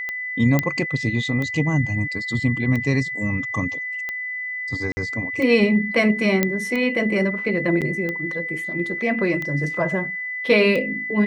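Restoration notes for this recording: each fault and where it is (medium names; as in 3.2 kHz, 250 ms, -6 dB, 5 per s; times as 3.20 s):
tick 45 rpm -15 dBFS
whine 2 kHz -26 dBFS
0.59 s: pop -5 dBFS
4.92–4.97 s: dropout 50 ms
6.43 s: pop -4 dBFS
7.81–7.82 s: dropout 7.6 ms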